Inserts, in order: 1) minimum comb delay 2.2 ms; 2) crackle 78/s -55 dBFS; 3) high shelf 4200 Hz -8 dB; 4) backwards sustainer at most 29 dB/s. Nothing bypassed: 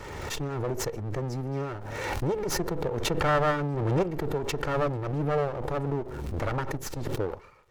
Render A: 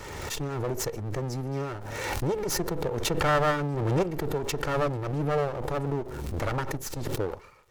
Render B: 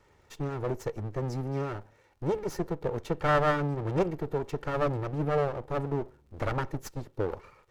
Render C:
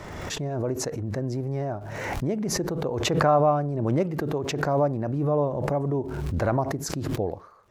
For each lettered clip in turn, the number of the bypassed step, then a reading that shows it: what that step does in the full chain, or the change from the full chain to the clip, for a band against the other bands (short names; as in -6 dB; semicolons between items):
3, 8 kHz band +2.5 dB; 4, 4 kHz band -7.0 dB; 1, 2 kHz band -4.0 dB